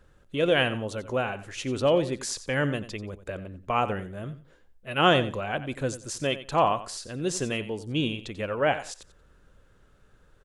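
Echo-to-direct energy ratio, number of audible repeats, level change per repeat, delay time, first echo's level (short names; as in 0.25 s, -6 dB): -14.0 dB, 2, -13.5 dB, 90 ms, -14.0 dB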